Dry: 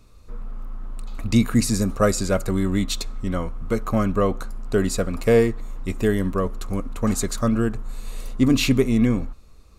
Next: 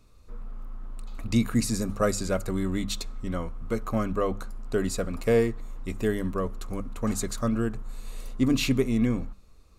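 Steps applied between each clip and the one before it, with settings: hum notches 50/100/150/200 Hz; trim -5.5 dB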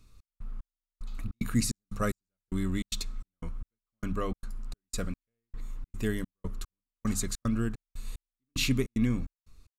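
peaking EQ 600 Hz -10 dB 1.8 oct; trance gate "xx..xx....xxx.x" 149 bpm -60 dB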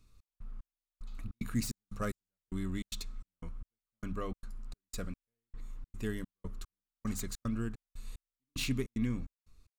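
self-modulated delay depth 0.055 ms; trim -6 dB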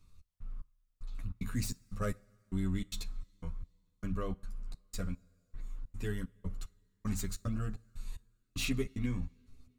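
two-slope reverb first 0.29 s, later 2.7 s, from -20 dB, DRR 17.5 dB; chorus voices 6, 0.24 Hz, delay 11 ms, depth 1.1 ms; trim +2.5 dB

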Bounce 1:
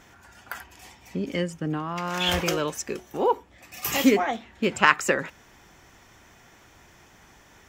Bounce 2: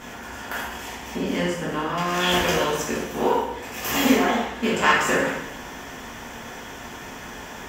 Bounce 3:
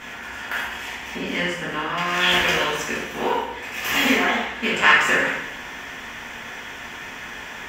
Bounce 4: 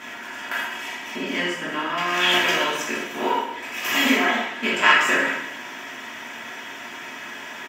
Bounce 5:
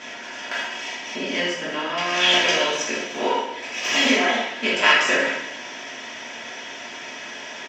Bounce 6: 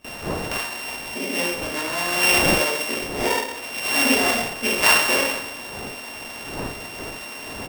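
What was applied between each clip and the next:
spectral levelling over time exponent 0.6; plate-style reverb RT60 0.84 s, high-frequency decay 0.85×, DRR -6.5 dB; trim -8 dB
peaking EQ 2.2 kHz +11.5 dB 1.7 oct; trim -4 dB
high-pass 130 Hz 24 dB/octave; comb 3.1 ms, depth 46%; trim -1 dB
FFT filter 360 Hz 0 dB, 510 Hz +7 dB, 1.2 kHz -3 dB, 2.7 kHz +3 dB, 5.9 kHz +8 dB, 11 kHz -19 dB; trim -1 dB
sorted samples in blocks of 16 samples; wind noise 600 Hz -35 dBFS; gate with hold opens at -26 dBFS

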